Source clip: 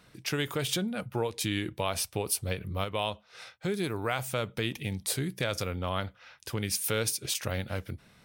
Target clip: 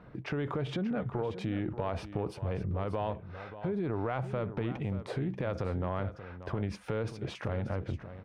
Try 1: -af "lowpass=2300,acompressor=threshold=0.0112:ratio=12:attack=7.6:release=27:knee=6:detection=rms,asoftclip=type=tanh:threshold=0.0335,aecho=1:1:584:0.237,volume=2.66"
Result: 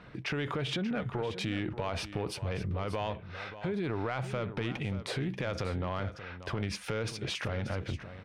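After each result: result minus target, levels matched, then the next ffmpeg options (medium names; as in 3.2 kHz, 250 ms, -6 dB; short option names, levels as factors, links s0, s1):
saturation: distortion +20 dB; 2 kHz band +5.5 dB
-af "lowpass=2300,acompressor=threshold=0.0112:ratio=12:attack=7.6:release=27:knee=6:detection=rms,asoftclip=type=tanh:threshold=0.106,aecho=1:1:584:0.237,volume=2.66"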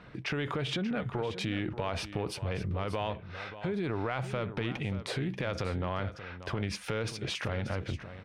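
2 kHz band +6.0 dB
-af "lowpass=1100,acompressor=threshold=0.0112:ratio=12:attack=7.6:release=27:knee=6:detection=rms,asoftclip=type=tanh:threshold=0.106,aecho=1:1:584:0.237,volume=2.66"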